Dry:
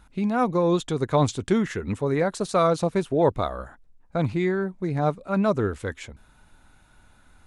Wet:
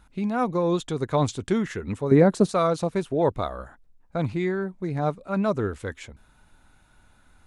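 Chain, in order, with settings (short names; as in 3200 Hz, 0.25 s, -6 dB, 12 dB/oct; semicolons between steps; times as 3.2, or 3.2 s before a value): 2.11–2.51 bell 220 Hz +12.5 dB 2.9 oct; gain -2 dB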